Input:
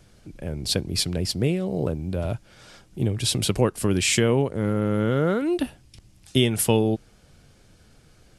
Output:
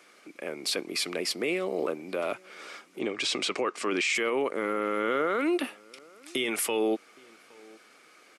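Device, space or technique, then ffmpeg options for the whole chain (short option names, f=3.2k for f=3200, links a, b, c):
laptop speaker: -filter_complex "[0:a]asettb=1/sr,asplit=3[a][b][c];[a]atrim=end=2.994[d];[b]atrim=start=2.99:end=4.15,asetpts=PTS-STARTPTS,afade=t=in:d=0.004:c=qsin,afade=t=out:st=1.156:d=0.004:c=qsin,lowpass=f=7.3k:w=0.5412,lowpass=f=7.3k:w=1.3066[e];[c]atrim=start=4.146[f];[d][e]acrossfade=d=0.004:c1=hsin:c2=qsin[g];[g][f]acrossfade=d=0.004:c1=qsin:c2=hsin,highpass=f=300:w=0.5412,highpass=f=300:w=1.3066,equalizer=f=1.2k:t=o:w=0.31:g=11.5,equalizer=f=2.2k:t=o:w=0.54:g=11,alimiter=limit=-19.5dB:level=0:latency=1:release=12,asplit=2[h][i];[i]adelay=816.3,volume=-25dB,highshelf=f=4k:g=-18.4[j];[h][j]amix=inputs=2:normalize=0"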